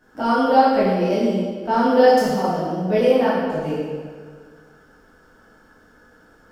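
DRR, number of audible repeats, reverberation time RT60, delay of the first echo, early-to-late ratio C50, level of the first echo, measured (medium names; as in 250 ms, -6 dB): -10.0 dB, no echo, 1.7 s, no echo, -1.5 dB, no echo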